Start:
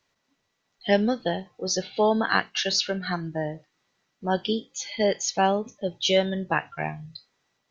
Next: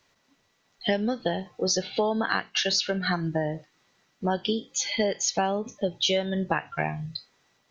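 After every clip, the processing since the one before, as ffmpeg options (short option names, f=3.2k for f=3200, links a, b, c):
-af "acompressor=threshold=-29dB:ratio=6,volume=6.5dB"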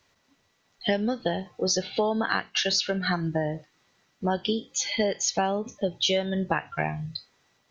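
-af "equalizer=f=75:t=o:w=0.69:g=6"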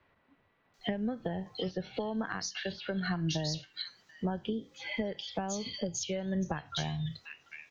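-filter_complex "[0:a]acrossover=split=2800[a][b];[b]adelay=740[c];[a][c]amix=inputs=2:normalize=0,aeval=exprs='0.335*(cos(1*acos(clip(val(0)/0.335,-1,1)))-cos(1*PI/2))+0.00531*(cos(2*acos(clip(val(0)/0.335,-1,1)))-cos(2*PI/2))':c=same,acrossover=split=170[d][e];[e]acompressor=threshold=-34dB:ratio=6[f];[d][f]amix=inputs=2:normalize=0"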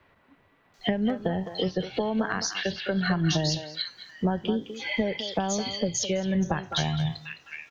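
-filter_complex "[0:a]asplit=2[a][b];[b]adelay=210,highpass=300,lowpass=3.4k,asoftclip=type=hard:threshold=-26.5dB,volume=-9dB[c];[a][c]amix=inputs=2:normalize=0,volume=7.5dB"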